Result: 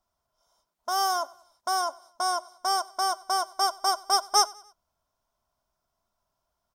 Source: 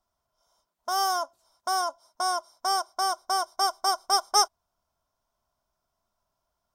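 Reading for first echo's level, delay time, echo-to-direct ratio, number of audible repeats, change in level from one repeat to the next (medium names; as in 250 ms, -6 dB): -23.0 dB, 95 ms, -22.0 dB, 2, -6.5 dB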